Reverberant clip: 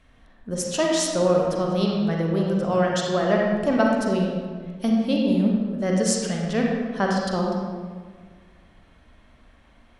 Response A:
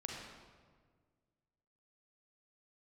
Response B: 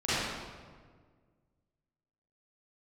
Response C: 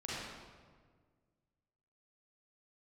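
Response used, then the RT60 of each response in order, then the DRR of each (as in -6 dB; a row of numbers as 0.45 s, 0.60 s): A; 1.7 s, 1.7 s, 1.7 s; -1.5 dB, -15.0 dB, -8.5 dB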